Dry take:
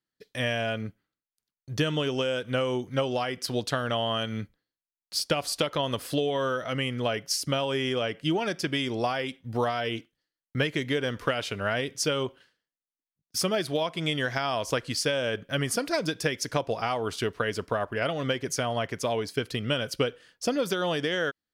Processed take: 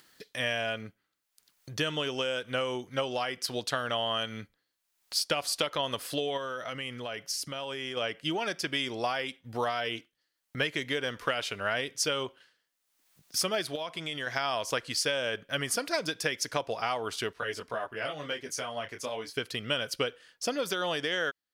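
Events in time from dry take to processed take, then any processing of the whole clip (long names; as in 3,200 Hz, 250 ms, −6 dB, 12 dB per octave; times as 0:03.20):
0:06.37–0:07.97: downward compressor, threshold −29 dBFS
0:13.75–0:14.27: downward compressor, threshold −28 dBFS
0:17.33–0:19.37: micro pitch shift up and down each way 12 cents
whole clip: low-shelf EQ 420 Hz −10.5 dB; upward compression, threshold −39 dBFS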